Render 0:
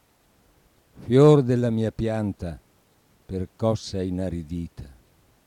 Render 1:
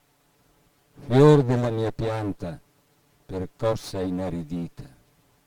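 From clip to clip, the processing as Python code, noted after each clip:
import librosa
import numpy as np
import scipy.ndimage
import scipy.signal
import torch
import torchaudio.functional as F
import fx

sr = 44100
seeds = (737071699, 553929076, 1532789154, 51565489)

y = fx.lower_of_two(x, sr, delay_ms=6.9)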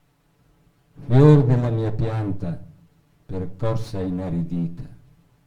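y = fx.bass_treble(x, sr, bass_db=8, treble_db=-5)
y = fx.room_shoebox(y, sr, seeds[0], volume_m3=460.0, walls='furnished', distance_m=0.64)
y = F.gain(torch.from_numpy(y), -2.0).numpy()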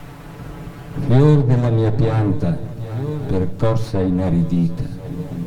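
y = fx.echo_swing(x, sr, ms=1045, ratio=3, feedback_pct=51, wet_db=-23.5)
y = fx.band_squash(y, sr, depth_pct=70)
y = F.gain(torch.from_numpy(y), 6.5).numpy()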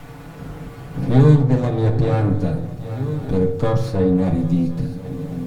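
y = fx.rev_fdn(x, sr, rt60_s=0.68, lf_ratio=1.2, hf_ratio=0.5, size_ms=12.0, drr_db=3.5)
y = F.gain(torch.from_numpy(y), -2.5).numpy()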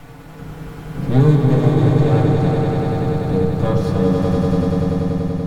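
y = fx.fade_out_tail(x, sr, length_s=1.58)
y = fx.echo_swell(y, sr, ms=96, loudest=5, wet_db=-6.0)
y = F.gain(torch.from_numpy(y), -1.0).numpy()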